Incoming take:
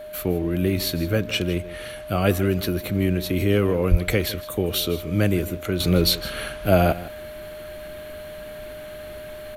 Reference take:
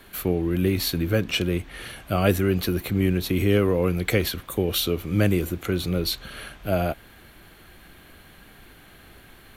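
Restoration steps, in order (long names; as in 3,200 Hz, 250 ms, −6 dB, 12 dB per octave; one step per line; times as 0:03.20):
notch filter 610 Hz, Q 30
0:03.90–0:04.02: high-pass filter 140 Hz 24 dB per octave
echo removal 159 ms −16 dB
0:05.80: level correction −6.5 dB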